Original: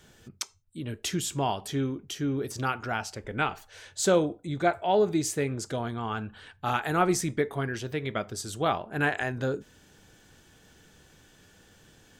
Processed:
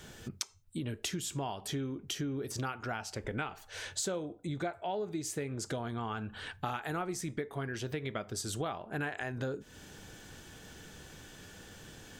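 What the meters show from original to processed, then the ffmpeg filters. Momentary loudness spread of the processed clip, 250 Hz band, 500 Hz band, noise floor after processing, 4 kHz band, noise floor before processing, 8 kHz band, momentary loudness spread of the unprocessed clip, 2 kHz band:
14 LU, −7.5 dB, −10.0 dB, −56 dBFS, −4.5 dB, −59 dBFS, −5.0 dB, 12 LU, −8.0 dB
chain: -af "acompressor=threshold=-40dB:ratio=8,volume=6dB"

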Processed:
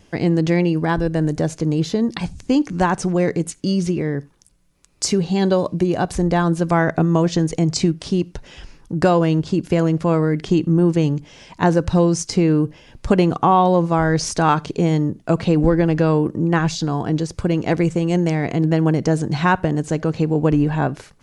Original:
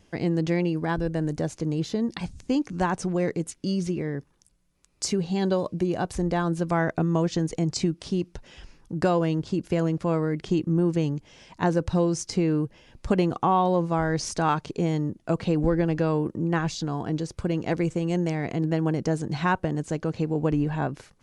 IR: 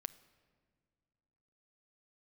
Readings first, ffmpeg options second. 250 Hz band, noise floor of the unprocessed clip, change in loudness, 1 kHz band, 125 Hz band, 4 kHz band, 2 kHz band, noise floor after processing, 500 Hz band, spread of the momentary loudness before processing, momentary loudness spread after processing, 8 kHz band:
+7.5 dB, −62 dBFS, +7.5 dB, +7.5 dB, +7.5 dB, +7.5 dB, +7.5 dB, −51 dBFS, +7.0 dB, 6 LU, 6 LU, +7.5 dB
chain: -filter_complex "[0:a]asplit=2[link_01][link_02];[1:a]atrim=start_sample=2205,atrim=end_sample=4410[link_03];[link_02][link_03]afir=irnorm=-1:irlink=0,volume=5.5dB[link_04];[link_01][link_04]amix=inputs=2:normalize=0"

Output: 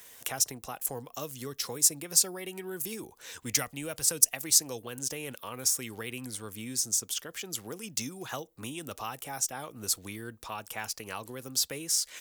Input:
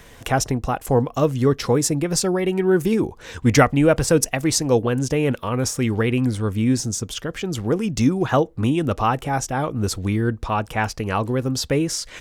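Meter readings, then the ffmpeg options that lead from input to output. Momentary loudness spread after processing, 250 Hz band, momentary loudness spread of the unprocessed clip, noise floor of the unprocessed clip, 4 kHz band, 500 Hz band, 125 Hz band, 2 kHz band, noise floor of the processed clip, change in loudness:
16 LU, −21.5 dB, 6 LU, −45 dBFS, −4.0 dB, −20.5 dB, −24.0 dB, −13.0 dB, −59 dBFS, −9.0 dB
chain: -filter_complex "[0:a]acrossover=split=170|3000[link_01][link_02][link_03];[link_02]acompressor=threshold=-24dB:ratio=3[link_04];[link_01][link_04][link_03]amix=inputs=3:normalize=0,aemphasis=mode=production:type=riaa,volume=-11.5dB"

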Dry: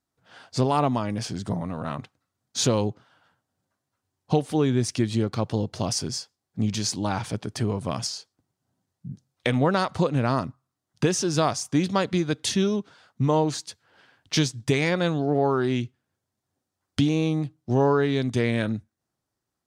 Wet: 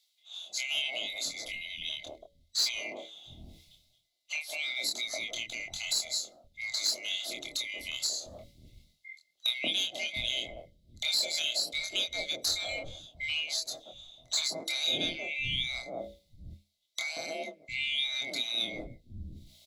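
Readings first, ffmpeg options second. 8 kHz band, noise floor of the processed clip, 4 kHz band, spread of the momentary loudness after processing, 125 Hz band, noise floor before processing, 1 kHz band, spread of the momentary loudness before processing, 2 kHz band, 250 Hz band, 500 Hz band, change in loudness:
−3.0 dB, −74 dBFS, +4.0 dB, 17 LU, −25.5 dB, −84 dBFS, −20.5 dB, 11 LU, −0.5 dB, −24.5 dB, −18.0 dB, −6.5 dB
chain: -filter_complex "[0:a]afftfilt=real='real(if(lt(b,920),b+92*(1-2*mod(floor(b/92),2)),b),0)':imag='imag(if(lt(b,920),b+92*(1-2*mod(floor(b/92),2)),b),0)':win_size=2048:overlap=0.75,firequalizer=gain_entry='entry(120,0);entry(190,-8);entry(470,-15);entry(670,4);entry(960,-13);entry(1700,-17);entry(2500,-13);entry(3800,12);entry(6600,1)':delay=0.05:min_phase=1,acrossover=split=200|920[link_01][link_02][link_03];[link_02]adelay=180[link_04];[link_01]adelay=700[link_05];[link_05][link_04][link_03]amix=inputs=3:normalize=0,asoftclip=type=tanh:threshold=-13.5dB,bandreject=frequency=60:width_type=h:width=6,bandreject=frequency=120:width_type=h:width=6,bandreject=frequency=180:width_type=h:width=6,bandreject=frequency=240:width_type=h:width=6,bandreject=frequency=300:width_type=h:width=6,bandreject=frequency=360:width_type=h:width=6,bandreject=frequency=420:width_type=h:width=6,bandreject=frequency=480:width_type=h:width=6,bandreject=frequency=540:width_type=h:width=6,bandreject=frequency=600:width_type=h:width=6,areverse,acompressor=mode=upward:threshold=-41dB:ratio=2.5,areverse,afreqshift=-35,asplit=2[link_06][link_07];[link_07]adelay=25,volume=-3.5dB[link_08];[link_06][link_08]amix=inputs=2:normalize=0,acompressor=threshold=-35dB:ratio=1.5,equalizer=frequency=330:width_type=o:width=2.2:gain=13.5,volume=-1.5dB"

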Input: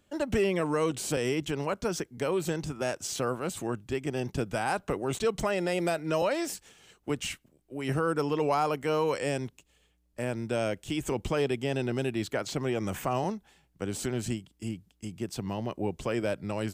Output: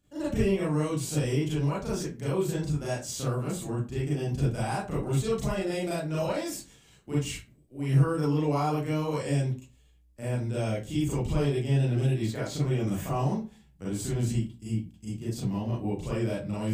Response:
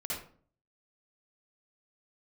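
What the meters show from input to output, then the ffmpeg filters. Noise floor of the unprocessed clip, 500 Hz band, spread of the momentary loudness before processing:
−69 dBFS, −2.0 dB, 9 LU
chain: -filter_complex "[0:a]bass=frequency=250:gain=10,treble=frequency=4000:gain=6[link_01];[1:a]atrim=start_sample=2205,asetrate=70560,aresample=44100[link_02];[link_01][link_02]afir=irnorm=-1:irlink=0,volume=-3dB"

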